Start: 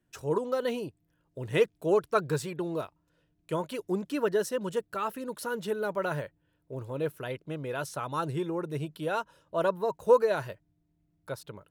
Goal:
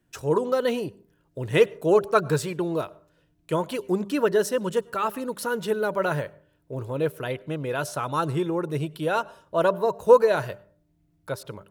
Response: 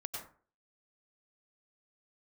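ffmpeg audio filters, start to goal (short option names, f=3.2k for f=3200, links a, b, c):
-filter_complex "[0:a]bandreject=f=198.5:t=h:w=4,bandreject=f=397:t=h:w=4,bandreject=f=595.5:t=h:w=4,asplit=2[a][b];[1:a]atrim=start_sample=2205[c];[b][c]afir=irnorm=-1:irlink=0,volume=-20.5dB[d];[a][d]amix=inputs=2:normalize=0,volume=5.5dB"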